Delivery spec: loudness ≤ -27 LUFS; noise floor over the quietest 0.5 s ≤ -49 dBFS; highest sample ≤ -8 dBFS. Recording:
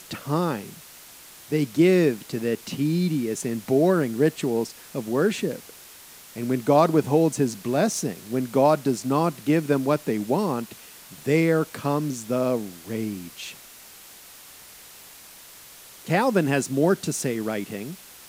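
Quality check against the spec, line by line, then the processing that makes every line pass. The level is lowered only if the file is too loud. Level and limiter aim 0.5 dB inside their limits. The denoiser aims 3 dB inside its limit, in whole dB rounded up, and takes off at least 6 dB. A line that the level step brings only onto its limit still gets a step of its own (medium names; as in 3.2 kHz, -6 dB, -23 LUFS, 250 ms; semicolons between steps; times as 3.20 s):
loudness -24.0 LUFS: fail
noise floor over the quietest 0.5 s -46 dBFS: fail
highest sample -6.0 dBFS: fail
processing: trim -3.5 dB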